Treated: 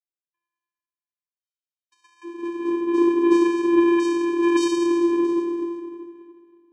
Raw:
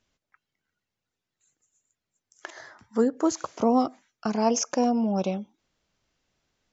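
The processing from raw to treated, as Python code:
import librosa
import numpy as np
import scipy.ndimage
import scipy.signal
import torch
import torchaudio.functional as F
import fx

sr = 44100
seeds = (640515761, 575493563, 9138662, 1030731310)

y = fx.bin_expand(x, sr, power=2.0)
y = y + 10.0 ** (-17.0 / 20.0) * np.pad(y, (int(327 * sr / 1000.0), 0))[:len(y)]
y = fx.rev_plate(y, sr, seeds[0], rt60_s=2.2, hf_ratio=0.6, predelay_ms=0, drr_db=-8.0)
y = fx.echo_pitch(y, sr, ms=154, semitones=3, count=3, db_per_echo=-6.0)
y = fx.vocoder(y, sr, bands=4, carrier='square', carrier_hz=342.0)
y = fx.high_shelf(y, sr, hz=6200.0, db=10.0)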